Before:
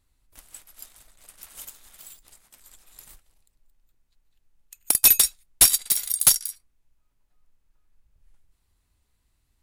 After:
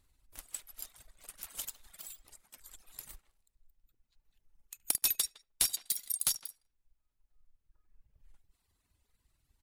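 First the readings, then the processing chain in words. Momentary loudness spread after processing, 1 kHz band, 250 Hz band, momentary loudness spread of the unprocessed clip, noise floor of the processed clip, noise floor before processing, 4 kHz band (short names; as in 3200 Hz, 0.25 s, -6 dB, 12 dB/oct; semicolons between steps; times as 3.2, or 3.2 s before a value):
22 LU, -13.5 dB, -13.5 dB, 8 LU, -81 dBFS, -72 dBFS, -11.5 dB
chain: reverb removal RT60 1.8 s; on a send: tape echo 74 ms, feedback 36%, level -19 dB, low-pass 1200 Hz; on the sum: AM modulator 20 Hz, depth 25%; in parallel at -8.5 dB: sample gate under -35.5 dBFS; on the sum: compressor 3:1, threshold -36 dBFS, peak gain reduction 19.5 dB; speakerphone echo 0.16 s, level -16 dB; dynamic EQ 4200 Hz, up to +4 dB, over -50 dBFS, Q 0.99; gain +1.5 dB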